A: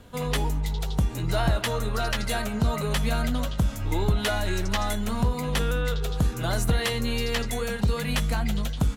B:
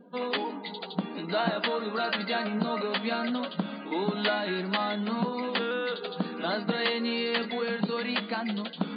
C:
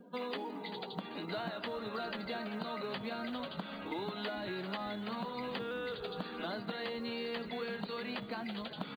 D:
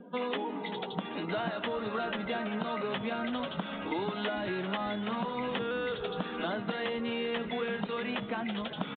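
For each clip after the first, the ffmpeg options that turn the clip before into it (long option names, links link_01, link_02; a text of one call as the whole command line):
ffmpeg -i in.wav -af "afftfilt=real='re*between(b*sr/4096,170,4800)':imag='im*between(b*sr/4096,170,4800)':win_size=4096:overlap=0.75,afftdn=noise_reduction=24:noise_floor=-51,areverse,acompressor=mode=upward:threshold=-32dB:ratio=2.5,areverse" out.wav
ffmpeg -i in.wav -filter_complex "[0:a]asplit=4[link_01][link_02][link_03][link_04];[link_02]adelay=388,afreqshift=-67,volume=-17dB[link_05];[link_03]adelay=776,afreqshift=-134,volume=-26.4dB[link_06];[link_04]adelay=1164,afreqshift=-201,volume=-35.7dB[link_07];[link_01][link_05][link_06][link_07]amix=inputs=4:normalize=0,acrossover=split=440|1100[link_08][link_09][link_10];[link_08]acompressor=threshold=-40dB:ratio=4[link_11];[link_09]acompressor=threshold=-42dB:ratio=4[link_12];[link_10]acompressor=threshold=-42dB:ratio=4[link_13];[link_11][link_12][link_13]amix=inputs=3:normalize=0,acrusher=bits=9:mode=log:mix=0:aa=0.000001,volume=-2.5dB" out.wav
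ffmpeg -i in.wav -af "aresample=8000,aresample=44100,volume=6dB" out.wav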